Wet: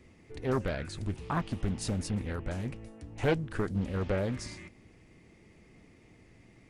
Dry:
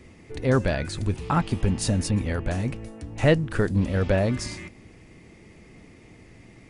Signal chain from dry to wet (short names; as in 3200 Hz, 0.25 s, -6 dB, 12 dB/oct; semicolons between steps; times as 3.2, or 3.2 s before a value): Doppler distortion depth 0.62 ms; gain -8.5 dB